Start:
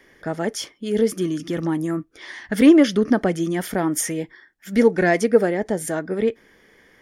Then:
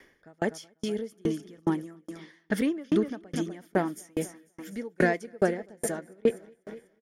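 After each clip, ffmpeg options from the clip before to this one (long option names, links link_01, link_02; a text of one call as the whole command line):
ffmpeg -i in.wav -af "aecho=1:1:247|494|741|988|1235|1482:0.251|0.143|0.0816|0.0465|0.0265|0.0151,aeval=exprs='val(0)*pow(10,-37*if(lt(mod(2.4*n/s,1),2*abs(2.4)/1000),1-mod(2.4*n/s,1)/(2*abs(2.4)/1000),(mod(2.4*n/s,1)-2*abs(2.4)/1000)/(1-2*abs(2.4)/1000))/20)':channel_layout=same" out.wav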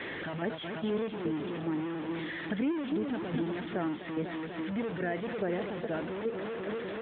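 ffmpeg -i in.wav -af "aeval=exprs='val(0)+0.5*0.0473*sgn(val(0))':channel_layout=same,alimiter=limit=-19.5dB:level=0:latency=1:release=105,volume=-4dB" -ar 8000 -c:a libopencore_amrnb -b:a 12200 out.amr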